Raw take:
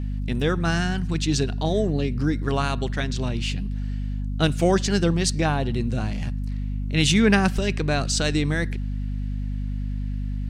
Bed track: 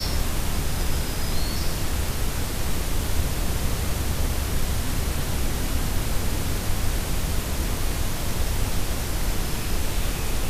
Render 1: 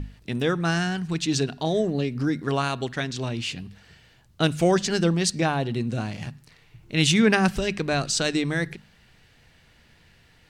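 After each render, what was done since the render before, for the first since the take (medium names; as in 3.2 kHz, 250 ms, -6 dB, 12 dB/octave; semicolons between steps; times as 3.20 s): hum notches 50/100/150/200/250 Hz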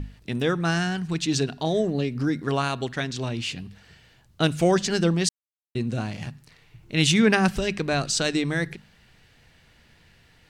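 5.29–5.75 s: mute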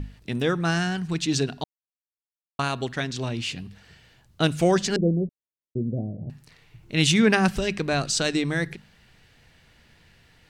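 1.64–2.59 s: mute; 4.96–6.30 s: steep low-pass 630 Hz 48 dB/octave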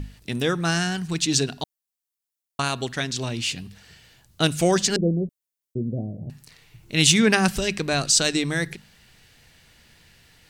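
treble shelf 4.5 kHz +11.5 dB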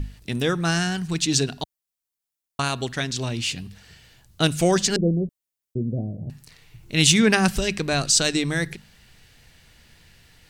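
bass shelf 82 Hz +6.5 dB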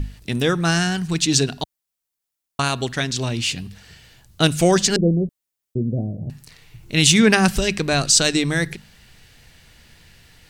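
trim +3.5 dB; peak limiter -2 dBFS, peak gain reduction 3 dB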